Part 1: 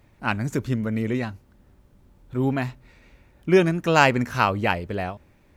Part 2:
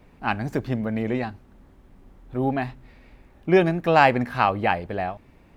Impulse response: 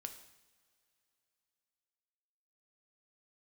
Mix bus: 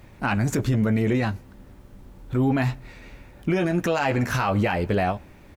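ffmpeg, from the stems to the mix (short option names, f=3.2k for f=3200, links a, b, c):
-filter_complex "[0:a]volume=1.5dB,asplit=2[a][b];[b]volume=-18.5dB[c];[1:a]volume=-1,adelay=13,volume=-9.5dB,asplit=2[d][e];[e]apad=whole_len=245232[f];[a][f]sidechaincompress=threshold=-34dB:ratio=8:attack=11:release=126[g];[2:a]atrim=start_sample=2205[h];[c][h]afir=irnorm=-1:irlink=0[i];[g][d][i]amix=inputs=3:normalize=0,acontrast=61,alimiter=limit=-14.5dB:level=0:latency=1:release=12"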